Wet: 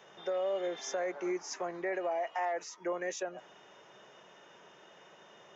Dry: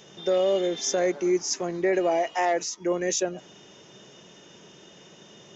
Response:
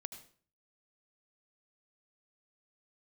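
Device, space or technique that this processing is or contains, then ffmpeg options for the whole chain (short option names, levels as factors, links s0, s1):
DJ mixer with the lows and highs turned down: -filter_complex "[0:a]acrossover=split=570 2100:gain=0.141 1 0.158[s0][s1][s2];[s0][s1][s2]amix=inputs=3:normalize=0,alimiter=level_in=1.58:limit=0.0631:level=0:latency=1:release=164,volume=0.631,volume=1.19"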